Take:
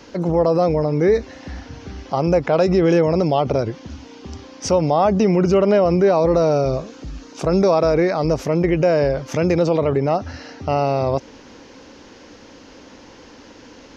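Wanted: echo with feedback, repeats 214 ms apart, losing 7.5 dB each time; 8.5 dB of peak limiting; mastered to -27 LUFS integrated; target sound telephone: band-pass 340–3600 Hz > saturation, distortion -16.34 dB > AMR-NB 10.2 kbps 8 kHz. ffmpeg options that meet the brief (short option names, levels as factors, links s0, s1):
-af "alimiter=limit=0.2:level=0:latency=1,highpass=340,lowpass=3600,aecho=1:1:214|428|642|856|1070:0.422|0.177|0.0744|0.0312|0.0131,asoftclip=threshold=0.119,volume=1.06" -ar 8000 -c:a libopencore_amrnb -b:a 10200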